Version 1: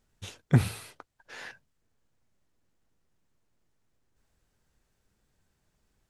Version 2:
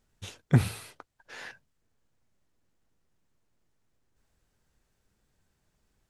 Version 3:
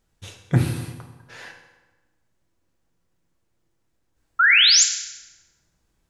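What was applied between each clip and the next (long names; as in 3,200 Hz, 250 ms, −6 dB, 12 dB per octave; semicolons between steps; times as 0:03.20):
no processing that can be heard
sound drawn into the spectrogram rise, 0:04.39–0:04.84, 1,300–7,600 Hz −17 dBFS; convolution reverb RT60 1.2 s, pre-delay 3 ms, DRR 3.5 dB; level +1.5 dB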